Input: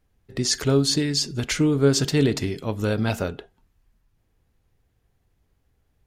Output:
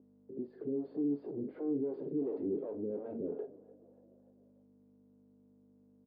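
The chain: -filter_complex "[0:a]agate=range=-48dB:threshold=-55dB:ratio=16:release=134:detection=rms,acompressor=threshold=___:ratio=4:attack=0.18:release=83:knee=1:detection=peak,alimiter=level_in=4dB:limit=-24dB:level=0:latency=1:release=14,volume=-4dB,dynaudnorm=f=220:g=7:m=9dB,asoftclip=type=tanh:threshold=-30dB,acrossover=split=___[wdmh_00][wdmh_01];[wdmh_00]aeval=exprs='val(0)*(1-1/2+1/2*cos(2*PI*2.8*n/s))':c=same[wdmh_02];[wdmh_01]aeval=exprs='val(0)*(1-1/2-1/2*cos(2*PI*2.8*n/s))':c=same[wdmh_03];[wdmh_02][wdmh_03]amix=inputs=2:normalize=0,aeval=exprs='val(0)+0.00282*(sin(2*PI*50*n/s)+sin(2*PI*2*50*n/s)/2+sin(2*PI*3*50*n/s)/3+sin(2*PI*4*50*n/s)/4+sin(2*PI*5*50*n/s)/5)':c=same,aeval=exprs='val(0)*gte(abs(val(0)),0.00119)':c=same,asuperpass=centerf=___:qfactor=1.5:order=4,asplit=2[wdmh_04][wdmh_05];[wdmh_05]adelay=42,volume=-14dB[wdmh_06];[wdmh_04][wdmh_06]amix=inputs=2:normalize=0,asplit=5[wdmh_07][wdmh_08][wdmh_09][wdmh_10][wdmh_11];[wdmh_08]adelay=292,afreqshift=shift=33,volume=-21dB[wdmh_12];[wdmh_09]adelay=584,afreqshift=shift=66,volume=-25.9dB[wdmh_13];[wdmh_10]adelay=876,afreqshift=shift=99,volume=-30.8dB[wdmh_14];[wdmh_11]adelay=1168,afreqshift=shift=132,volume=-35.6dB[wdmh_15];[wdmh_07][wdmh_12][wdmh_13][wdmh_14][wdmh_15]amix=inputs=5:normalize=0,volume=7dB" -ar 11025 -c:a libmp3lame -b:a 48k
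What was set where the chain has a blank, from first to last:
-25dB, 420, 360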